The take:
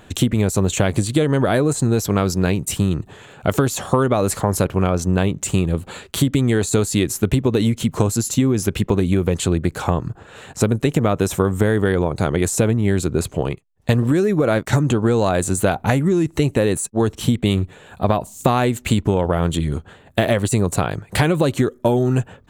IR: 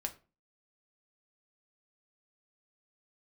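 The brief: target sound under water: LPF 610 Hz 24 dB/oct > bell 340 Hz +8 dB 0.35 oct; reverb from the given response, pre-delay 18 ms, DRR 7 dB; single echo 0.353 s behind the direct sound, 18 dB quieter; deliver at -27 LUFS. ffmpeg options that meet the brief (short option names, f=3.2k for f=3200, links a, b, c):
-filter_complex "[0:a]aecho=1:1:353:0.126,asplit=2[a][b];[1:a]atrim=start_sample=2205,adelay=18[c];[b][c]afir=irnorm=-1:irlink=0,volume=-7dB[d];[a][d]amix=inputs=2:normalize=0,lowpass=f=610:w=0.5412,lowpass=f=610:w=1.3066,equalizer=f=340:t=o:w=0.35:g=8,volume=-9.5dB"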